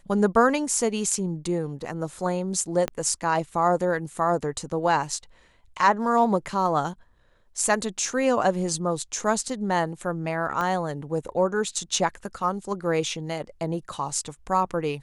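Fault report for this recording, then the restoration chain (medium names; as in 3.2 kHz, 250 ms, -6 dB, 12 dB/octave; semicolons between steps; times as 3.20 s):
2.88 s: pop -13 dBFS
10.61 s: pop -16 dBFS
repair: de-click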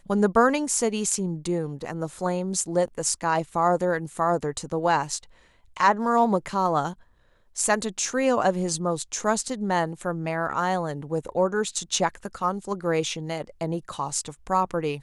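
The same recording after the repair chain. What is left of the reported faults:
2.88 s: pop
10.61 s: pop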